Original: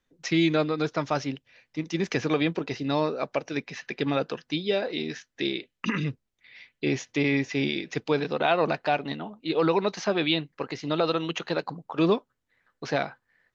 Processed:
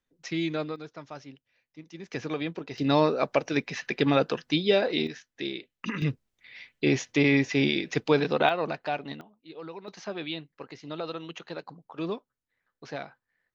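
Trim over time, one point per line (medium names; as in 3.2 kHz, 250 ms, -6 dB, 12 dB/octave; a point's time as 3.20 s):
-7 dB
from 0.76 s -15 dB
from 2.13 s -7 dB
from 2.78 s +3.5 dB
from 5.07 s -5 dB
from 6.02 s +2.5 dB
from 8.49 s -5.5 dB
from 9.21 s -18 dB
from 9.88 s -10 dB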